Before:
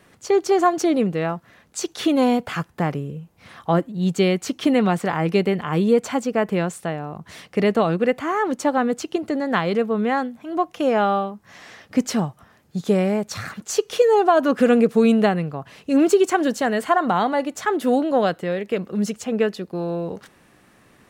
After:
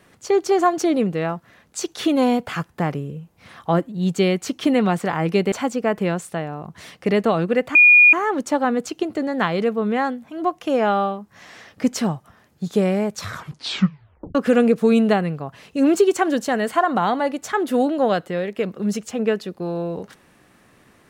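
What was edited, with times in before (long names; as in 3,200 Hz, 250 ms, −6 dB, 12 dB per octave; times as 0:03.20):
0:05.52–0:06.03: remove
0:08.26: insert tone 2,440 Hz −7 dBFS 0.38 s
0:13.33: tape stop 1.15 s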